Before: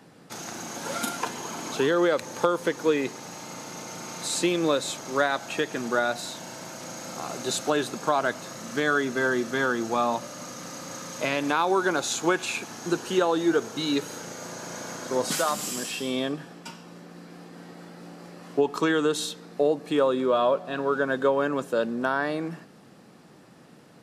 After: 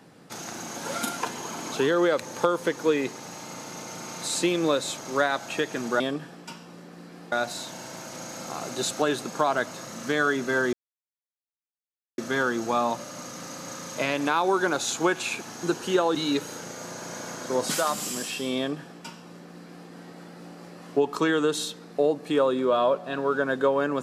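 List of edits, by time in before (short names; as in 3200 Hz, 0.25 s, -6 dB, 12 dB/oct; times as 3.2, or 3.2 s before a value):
9.41 insert silence 1.45 s
13.38–13.76 cut
16.18–17.5 copy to 6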